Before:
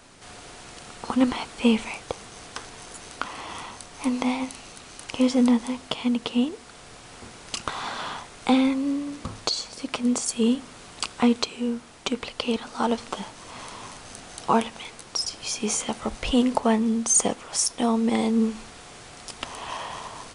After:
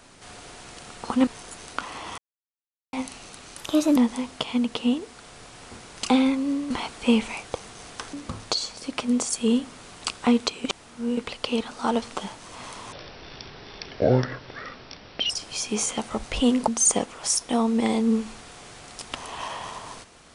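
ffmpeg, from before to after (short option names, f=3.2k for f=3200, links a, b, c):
-filter_complex "[0:a]asplit=14[a][b][c][d][e][f][g][h][i][j][k][l][m][n];[a]atrim=end=1.272[o];[b]atrim=start=2.698:end=3.61,asetpts=PTS-STARTPTS,afade=t=out:st=0.908:d=0.004:c=hsin[p];[c]atrim=start=3.61:end=4.36,asetpts=PTS-STARTPTS,volume=0[q];[d]atrim=start=4.36:end=5.014,asetpts=PTS-STARTPTS,afade=t=in:d=0.004:c=hsin[r];[e]atrim=start=5.01:end=5.47,asetpts=PTS-STARTPTS,asetrate=52920,aresample=44100[s];[f]atrim=start=5.466:end=7.602[t];[g]atrim=start=8.478:end=9.092[u];[h]atrim=start=1.268:end=2.702[v];[i]atrim=start=9.088:end=11.602[w];[j]atrim=start=11.598:end=12.132,asetpts=PTS-STARTPTS,areverse[x];[k]atrim=start=12.128:end=13.884[y];[l]atrim=start=13.88:end=15.21,asetpts=PTS-STARTPTS,asetrate=24696,aresample=44100,atrim=end_sample=104737,asetpts=PTS-STARTPTS[z];[m]atrim=start=15.206:end=16.592[aa];[n]atrim=start=16.968[ab];[p][q][r]concat=n=3:v=0:a=1[ac];[o][ac]acrossfade=d=0.004:c1=hsin:c2=hsin[ad];[ad][s]acrossfade=d=0.004:c1=hsin:c2=hsin[ae];[ae][t]acrossfade=d=0.004:c1=hsin:c2=hsin[af];[af][u]acrossfade=d=0.004:c1=hsin:c2=hsin[ag];[ag][v]acrossfade=d=0.004:c1=hsin:c2=hsin[ah];[ah][w]acrossfade=d=0.004:c1=hsin:c2=hsin[ai];[ai][x]acrossfade=d=0.004:c1=hsin:c2=hsin[aj];[aj][y]acrossfade=d=0.004:c1=hsin:c2=hsin[ak];[ak][z]acrossfade=d=0.004:c1=hsin:c2=hsin[al];[al][aa]acrossfade=d=0.004:c1=hsin:c2=hsin[am];[am][ab]acrossfade=d=0.004:c1=hsin:c2=hsin"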